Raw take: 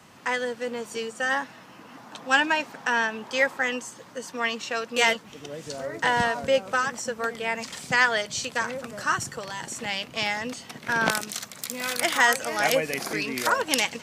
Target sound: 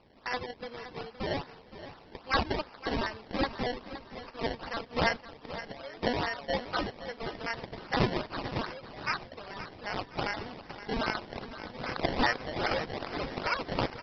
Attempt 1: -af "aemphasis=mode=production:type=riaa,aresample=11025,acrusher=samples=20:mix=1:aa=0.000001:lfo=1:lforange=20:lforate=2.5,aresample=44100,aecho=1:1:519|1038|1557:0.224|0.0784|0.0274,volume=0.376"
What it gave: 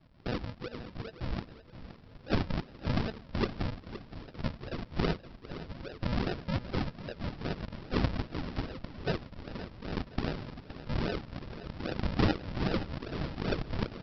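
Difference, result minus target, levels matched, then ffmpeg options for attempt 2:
decimation with a swept rate: distortion +18 dB
-af "aemphasis=mode=production:type=riaa,aresample=11025,acrusher=samples=6:mix=1:aa=0.000001:lfo=1:lforange=6:lforate=2.5,aresample=44100,aecho=1:1:519|1038|1557:0.224|0.0784|0.0274,volume=0.376"

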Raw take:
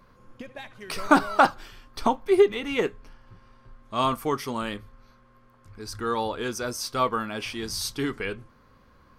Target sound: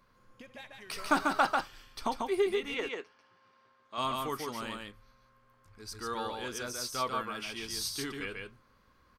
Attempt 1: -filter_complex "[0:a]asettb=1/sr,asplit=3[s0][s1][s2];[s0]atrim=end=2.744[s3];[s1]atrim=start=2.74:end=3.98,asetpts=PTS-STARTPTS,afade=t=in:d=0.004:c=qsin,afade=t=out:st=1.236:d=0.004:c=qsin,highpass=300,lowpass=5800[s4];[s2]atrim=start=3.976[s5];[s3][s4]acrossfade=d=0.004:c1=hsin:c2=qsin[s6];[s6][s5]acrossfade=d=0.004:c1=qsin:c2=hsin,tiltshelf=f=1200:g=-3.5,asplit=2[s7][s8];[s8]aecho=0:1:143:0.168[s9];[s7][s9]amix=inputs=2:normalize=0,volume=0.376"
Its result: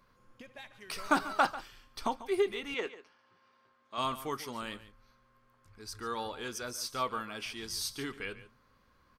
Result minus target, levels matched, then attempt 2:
echo-to-direct -12 dB
-filter_complex "[0:a]asettb=1/sr,asplit=3[s0][s1][s2];[s0]atrim=end=2.744[s3];[s1]atrim=start=2.74:end=3.98,asetpts=PTS-STARTPTS,afade=t=in:d=0.004:c=qsin,afade=t=out:st=1.236:d=0.004:c=qsin,highpass=300,lowpass=5800[s4];[s2]atrim=start=3.976[s5];[s3][s4]acrossfade=d=0.004:c1=hsin:c2=qsin[s6];[s6][s5]acrossfade=d=0.004:c1=qsin:c2=hsin,tiltshelf=f=1200:g=-3.5,asplit=2[s7][s8];[s8]aecho=0:1:143:0.668[s9];[s7][s9]amix=inputs=2:normalize=0,volume=0.376"

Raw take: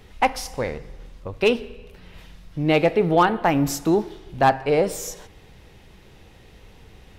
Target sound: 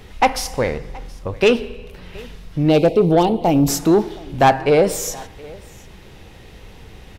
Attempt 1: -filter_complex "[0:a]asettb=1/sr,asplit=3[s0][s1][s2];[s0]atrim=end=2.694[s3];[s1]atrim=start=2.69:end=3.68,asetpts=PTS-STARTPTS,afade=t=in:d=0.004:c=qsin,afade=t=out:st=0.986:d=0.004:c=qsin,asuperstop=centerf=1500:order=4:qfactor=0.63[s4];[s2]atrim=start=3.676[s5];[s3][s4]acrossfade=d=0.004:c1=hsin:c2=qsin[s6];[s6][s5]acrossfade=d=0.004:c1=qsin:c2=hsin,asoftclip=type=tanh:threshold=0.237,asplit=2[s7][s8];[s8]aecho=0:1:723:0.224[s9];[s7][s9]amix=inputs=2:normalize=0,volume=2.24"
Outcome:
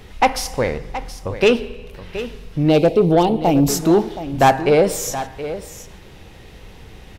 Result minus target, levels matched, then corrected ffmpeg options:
echo-to-direct +10.5 dB
-filter_complex "[0:a]asettb=1/sr,asplit=3[s0][s1][s2];[s0]atrim=end=2.694[s3];[s1]atrim=start=2.69:end=3.68,asetpts=PTS-STARTPTS,afade=t=in:d=0.004:c=qsin,afade=t=out:st=0.986:d=0.004:c=qsin,asuperstop=centerf=1500:order=4:qfactor=0.63[s4];[s2]atrim=start=3.676[s5];[s3][s4]acrossfade=d=0.004:c1=hsin:c2=qsin[s6];[s6][s5]acrossfade=d=0.004:c1=qsin:c2=hsin,asoftclip=type=tanh:threshold=0.237,asplit=2[s7][s8];[s8]aecho=0:1:723:0.0668[s9];[s7][s9]amix=inputs=2:normalize=0,volume=2.24"

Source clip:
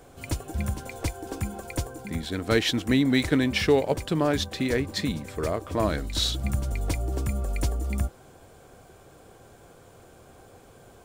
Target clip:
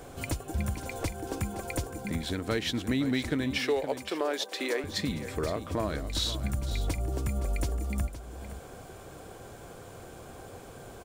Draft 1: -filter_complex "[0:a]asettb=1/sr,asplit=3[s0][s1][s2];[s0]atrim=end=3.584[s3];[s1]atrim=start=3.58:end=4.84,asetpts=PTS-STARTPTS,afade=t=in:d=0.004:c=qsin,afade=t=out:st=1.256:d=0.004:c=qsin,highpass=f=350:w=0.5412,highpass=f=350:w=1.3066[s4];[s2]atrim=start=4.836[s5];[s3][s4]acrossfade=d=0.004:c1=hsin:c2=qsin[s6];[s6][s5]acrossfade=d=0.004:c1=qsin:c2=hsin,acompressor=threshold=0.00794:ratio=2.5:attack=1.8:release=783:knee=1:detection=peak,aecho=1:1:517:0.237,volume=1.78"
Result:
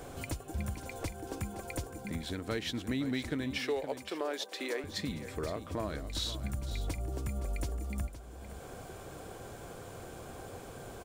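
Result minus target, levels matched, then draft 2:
compression: peak gain reduction +5.5 dB
-filter_complex "[0:a]asettb=1/sr,asplit=3[s0][s1][s2];[s0]atrim=end=3.584[s3];[s1]atrim=start=3.58:end=4.84,asetpts=PTS-STARTPTS,afade=t=in:d=0.004:c=qsin,afade=t=out:st=1.256:d=0.004:c=qsin,highpass=f=350:w=0.5412,highpass=f=350:w=1.3066[s4];[s2]atrim=start=4.836[s5];[s3][s4]acrossfade=d=0.004:c1=hsin:c2=qsin[s6];[s6][s5]acrossfade=d=0.004:c1=qsin:c2=hsin,acompressor=threshold=0.0224:ratio=2.5:attack=1.8:release=783:knee=1:detection=peak,aecho=1:1:517:0.237,volume=1.78"

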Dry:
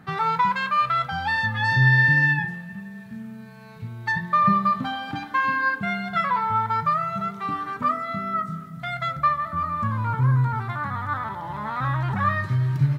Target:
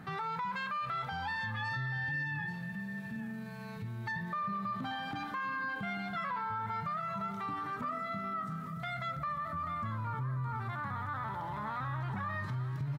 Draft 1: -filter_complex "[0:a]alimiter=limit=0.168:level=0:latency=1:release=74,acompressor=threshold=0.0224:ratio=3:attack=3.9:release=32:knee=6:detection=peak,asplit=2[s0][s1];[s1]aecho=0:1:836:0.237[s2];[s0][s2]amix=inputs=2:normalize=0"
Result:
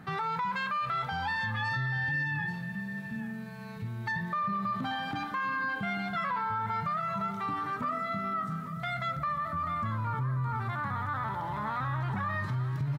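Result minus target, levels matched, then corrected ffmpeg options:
compression: peak gain reduction -4.5 dB
-filter_complex "[0:a]alimiter=limit=0.168:level=0:latency=1:release=74,acompressor=threshold=0.01:ratio=3:attack=3.9:release=32:knee=6:detection=peak,asplit=2[s0][s1];[s1]aecho=0:1:836:0.237[s2];[s0][s2]amix=inputs=2:normalize=0"

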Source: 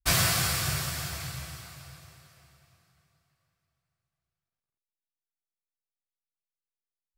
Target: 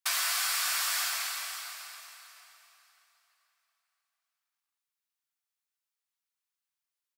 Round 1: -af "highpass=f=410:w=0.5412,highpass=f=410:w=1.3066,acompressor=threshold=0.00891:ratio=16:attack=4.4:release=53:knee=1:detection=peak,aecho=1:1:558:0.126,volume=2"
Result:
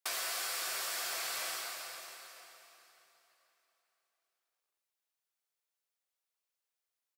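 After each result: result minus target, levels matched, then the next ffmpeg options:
500 Hz band +12.5 dB; compression: peak gain reduction +7.5 dB
-af "highpass=f=880:w=0.5412,highpass=f=880:w=1.3066,acompressor=threshold=0.00891:ratio=16:attack=4.4:release=53:knee=1:detection=peak,aecho=1:1:558:0.126,volume=2"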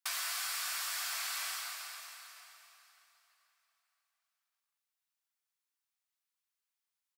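compression: peak gain reduction +7.5 dB
-af "highpass=f=880:w=0.5412,highpass=f=880:w=1.3066,acompressor=threshold=0.0224:ratio=16:attack=4.4:release=53:knee=1:detection=peak,aecho=1:1:558:0.126,volume=2"

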